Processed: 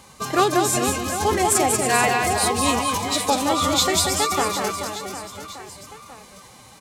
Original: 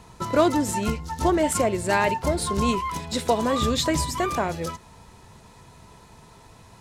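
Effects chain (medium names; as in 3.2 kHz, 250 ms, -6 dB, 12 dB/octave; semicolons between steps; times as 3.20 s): tilt EQ +2 dB/octave; reverse bouncing-ball echo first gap 190 ms, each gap 1.3×, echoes 5; formant-preserving pitch shift +3 st; trim +2 dB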